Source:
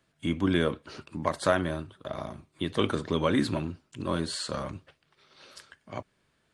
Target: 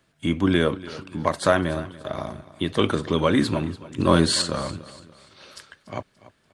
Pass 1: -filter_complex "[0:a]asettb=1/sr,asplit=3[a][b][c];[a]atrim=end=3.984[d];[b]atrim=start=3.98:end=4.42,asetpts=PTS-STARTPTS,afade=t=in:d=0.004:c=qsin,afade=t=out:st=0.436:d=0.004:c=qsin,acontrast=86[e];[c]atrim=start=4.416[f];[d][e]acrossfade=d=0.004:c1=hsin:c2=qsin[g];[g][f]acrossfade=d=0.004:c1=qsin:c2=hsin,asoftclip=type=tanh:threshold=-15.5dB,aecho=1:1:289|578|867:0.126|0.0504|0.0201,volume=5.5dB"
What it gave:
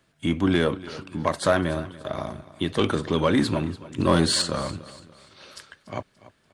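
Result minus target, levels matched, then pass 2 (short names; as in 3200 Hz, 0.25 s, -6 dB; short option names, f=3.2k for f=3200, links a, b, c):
soft clip: distortion +20 dB
-filter_complex "[0:a]asettb=1/sr,asplit=3[a][b][c];[a]atrim=end=3.984[d];[b]atrim=start=3.98:end=4.42,asetpts=PTS-STARTPTS,afade=t=in:d=0.004:c=qsin,afade=t=out:st=0.436:d=0.004:c=qsin,acontrast=86[e];[c]atrim=start=4.416[f];[d][e]acrossfade=d=0.004:c1=hsin:c2=qsin[g];[g][f]acrossfade=d=0.004:c1=qsin:c2=hsin,asoftclip=type=tanh:threshold=-3.5dB,aecho=1:1:289|578|867:0.126|0.0504|0.0201,volume=5.5dB"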